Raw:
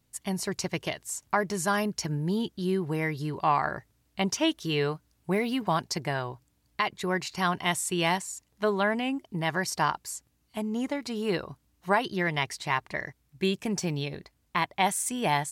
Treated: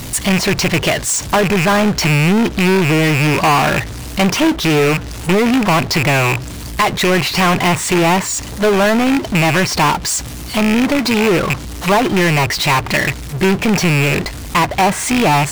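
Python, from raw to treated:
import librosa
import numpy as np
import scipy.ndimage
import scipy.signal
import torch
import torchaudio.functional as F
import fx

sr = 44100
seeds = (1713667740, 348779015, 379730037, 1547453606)

y = fx.rattle_buzz(x, sr, strikes_db=-42.0, level_db=-18.0)
y = fx.env_lowpass_down(y, sr, base_hz=1500.0, full_db=-22.5)
y = fx.power_curve(y, sr, exponent=0.35)
y = y * 10.0 ** (5.0 / 20.0)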